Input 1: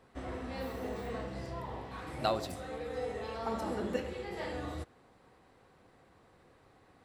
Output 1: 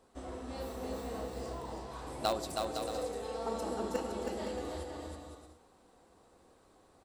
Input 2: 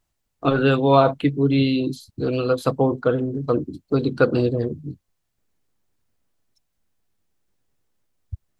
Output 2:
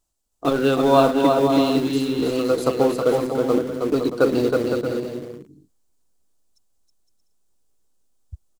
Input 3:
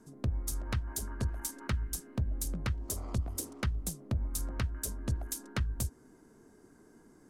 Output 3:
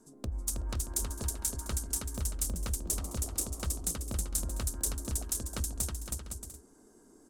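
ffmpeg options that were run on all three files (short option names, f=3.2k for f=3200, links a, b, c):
-filter_complex "[0:a]equalizer=f=125:t=o:w=1:g=-10,equalizer=f=2k:t=o:w=1:g=-9,equalizer=f=8k:t=o:w=1:g=7,asplit=2[a][b];[b]acrusher=bits=3:mix=0:aa=0.000001,volume=-12dB[c];[a][c]amix=inputs=2:normalize=0,aecho=1:1:320|512|627.2|696.3|737.8:0.631|0.398|0.251|0.158|0.1,volume=-1dB"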